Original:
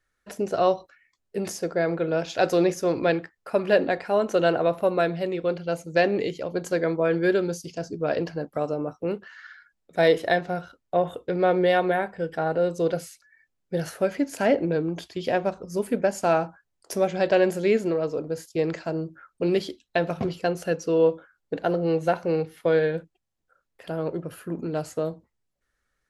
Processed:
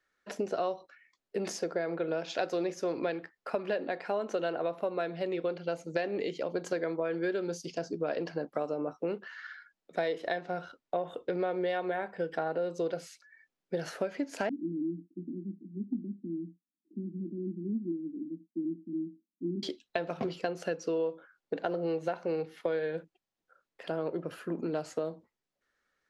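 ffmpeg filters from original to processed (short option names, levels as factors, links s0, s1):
-filter_complex "[0:a]asettb=1/sr,asplit=3[s0][s1][s2];[s0]atrim=end=14.494[s3];[s1]atrim=start=14.49:end=19.63,asetpts=PTS-STARTPTS,afade=t=in:d=0.004:c=qsin,afade=t=out:st=5.136:d=0.004:c=qsin,asuperpass=centerf=240:order=12:qfactor=1.5[s4];[s2]atrim=start=19.626[s5];[s3][s4]acrossfade=d=0.004:c1=hsin:c2=qsin[s6];[s6][s5]acrossfade=d=0.004:c1=qsin:c2=hsin,acrossover=split=180 6800:gain=0.158 1 0.178[s7][s8][s9];[s7][s8][s9]amix=inputs=3:normalize=0,acompressor=threshold=0.0355:ratio=6"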